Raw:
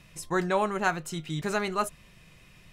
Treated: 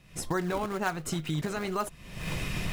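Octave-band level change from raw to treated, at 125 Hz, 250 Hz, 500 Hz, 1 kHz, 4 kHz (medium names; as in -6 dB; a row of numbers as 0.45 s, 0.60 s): +3.0 dB, 0.0 dB, -3.5 dB, -4.5 dB, +0.5 dB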